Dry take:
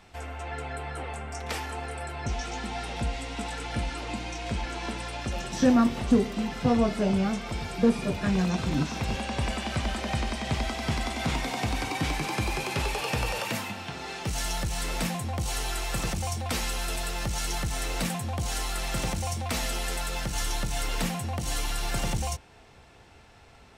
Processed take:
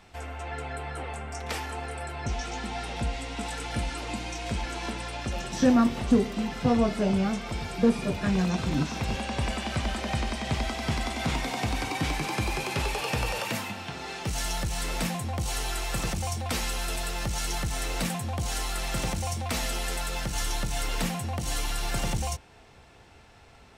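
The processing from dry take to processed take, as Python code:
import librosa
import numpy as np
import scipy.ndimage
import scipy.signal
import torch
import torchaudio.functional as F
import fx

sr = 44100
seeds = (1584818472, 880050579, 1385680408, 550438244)

y = fx.high_shelf(x, sr, hz=9300.0, db=9.0, at=(3.43, 4.9))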